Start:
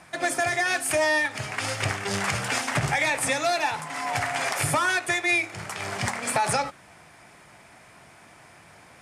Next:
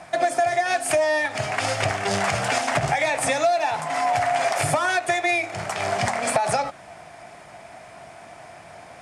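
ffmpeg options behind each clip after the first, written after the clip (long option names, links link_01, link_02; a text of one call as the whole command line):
ffmpeg -i in.wav -af "lowpass=10000,equalizer=frequency=680:width_type=o:width=0.45:gain=11.5,acompressor=threshold=-23dB:ratio=4,volume=4dB" out.wav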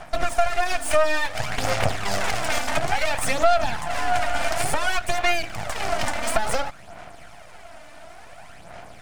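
ffmpeg -i in.wav -af "aeval=exprs='max(val(0),0)':channel_layout=same,aphaser=in_gain=1:out_gain=1:delay=3.4:decay=0.48:speed=0.57:type=sinusoidal,equalizer=frequency=370:width_type=o:width=0.49:gain=-3.5,volume=1.5dB" out.wav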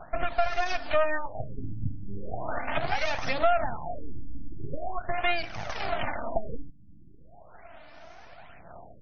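ffmpeg -i in.wav -af "afftfilt=real='re*lt(b*sr/1024,310*pow(6600/310,0.5+0.5*sin(2*PI*0.4*pts/sr)))':imag='im*lt(b*sr/1024,310*pow(6600/310,0.5+0.5*sin(2*PI*0.4*pts/sr)))':win_size=1024:overlap=0.75,volume=-5dB" out.wav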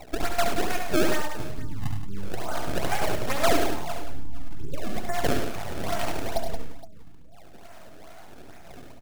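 ffmpeg -i in.wav -filter_complex "[0:a]acrusher=samples=26:mix=1:aa=0.000001:lfo=1:lforange=41.6:lforate=2.3,asplit=2[link_01][link_02];[link_02]aecho=0:1:70|100|175|468:0.473|0.355|0.316|0.119[link_03];[link_01][link_03]amix=inputs=2:normalize=0" out.wav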